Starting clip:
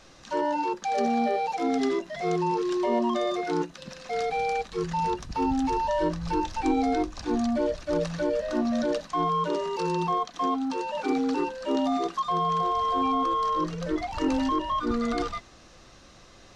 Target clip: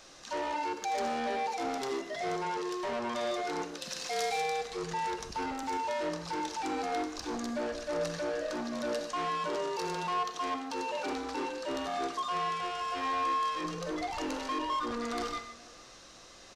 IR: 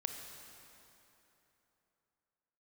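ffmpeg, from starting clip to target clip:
-filter_complex "[0:a]asettb=1/sr,asplit=3[s0][s1][s2];[s0]atrim=end=3.814[s3];[s1]atrim=start=3.81:end=4.42,asetpts=PTS-STARTPTS,afade=t=in:d=0.004:c=qsin,afade=t=out:st=0.606:d=0.004:c=qsin,highshelf=f=2700:g=10[s4];[s2]atrim=start=4.416[s5];[s3][s4]acrossfade=d=0.004:c1=hsin:c2=qsin[s6];[s6][s5]acrossfade=d=0.004:c1=qsin:c2=hsin,asettb=1/sr,asplit=3[s7][s8][s9];[s7]atrim=end=5.634[s10];[s8]atrim=start=5.63:end=7.16,asetpts=PTS-STARTPTS,afade=t=in:d=0.004:c=qsin,afade=t=out:st=1.526:d=0.004:c=qsin,highpass=f=190:p=1[s11];[s9]atrim=start=7.156[s12];[s10][s11]acrossfade=d=0.004:c1=hsin:c2=qsin[s13];[s13][s12]acrossfade=d=0.004:c1=qsin:c2=hsin,asoftclip=type=tanh:threshold=0.0398,bass=f=250:g=-9,treble=f=4000:g=5[s14];[1:a]atrim=start_sample=2205,afade=t=out:st=0.22:d=0.01,atrim=end_sample=10143[s15];[s14][s15]afir=irnorm=-1:irlink=0,aresample=32000,aresample=44100,asplit=2[s16][s17];[s17]adelay=454.8,volume=0.0794,highshelf=f=4000:g=-10.2[s18];[s16][s18]amix=inputs=2:normalize=0"

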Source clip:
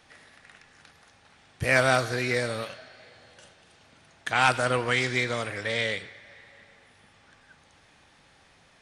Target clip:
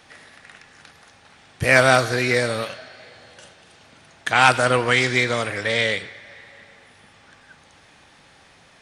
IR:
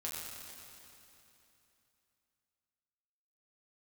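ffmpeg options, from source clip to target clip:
-af "lowshelf=f=63:g=-6,volume=2.24"

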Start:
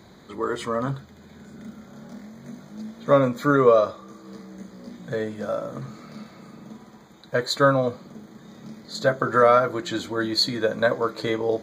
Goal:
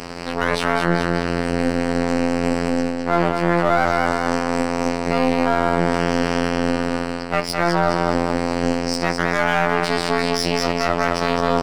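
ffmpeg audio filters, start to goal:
-af "lowpass=6500,equalizer=f=2500:w=7.4:g=8,asetrate=53981,aresample=44100,atempo=0.816958,afftfilt=real='hypot(re,im)*cos(PI*b)':imag='0':win_size=2048:overlap=0.75,areverse,acompressor=threshold=0.0178:ratio=20,areverse,aecho=1:1:209|418|627|836|1045|1254:0.473|0.241|0.123|0.0628|0.032|0.0163,aeval=exprs='max(val(0),0)':c=same,lowshelf=f=81:g=-7.5,alimiter=level_in=15.8:limit=0.891:release=50:level=0:latency=1,volume=0.891"

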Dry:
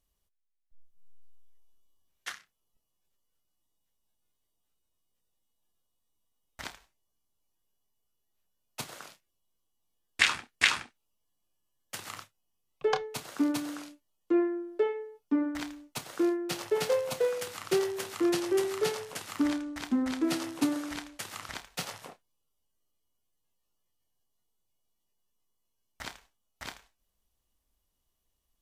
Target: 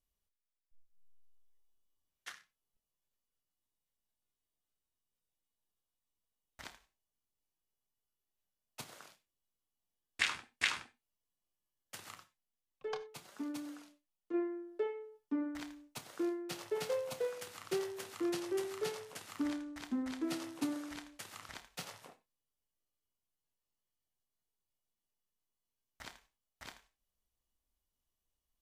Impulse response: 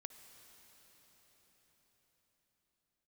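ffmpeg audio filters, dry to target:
-filter_complex "[0:a]asplit=3[s0][s1][s2];[s0]afade=t=out:st=12.14:d=0.02[s3];[s1]flanger=delay=3.2:depth=2.7:regen=44:speed=1.1:shape=triangular,afade=t=in:st=12.14:d=0.02,afade=t=out:st=14.33:d=0.02[s4];[s2]afade=t=in:st=14.33:d=0.02[s5];[s3][s4][s5]amix=inputs=3:normalize=0[s6];[1:a]atrim=start_sample=2205,atrim=end_sample=4410[s7];[s6][s7]afir=irnorm=-1:irlink=0,volume=0.708"

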